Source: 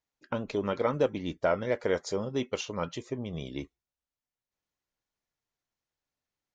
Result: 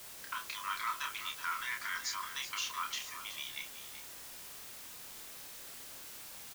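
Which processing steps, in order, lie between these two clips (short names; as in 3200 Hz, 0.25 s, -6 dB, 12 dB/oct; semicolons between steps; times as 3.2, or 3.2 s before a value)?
Chebyshev high-pass 980 Hz, order 8; limiter -32.5 dBFS, peak gain reduction 10.5 dB; added noise white -56 dBFS; doubler 29 ms -5 dB; echo 0.375 s -11 dB; gain +5.5 dB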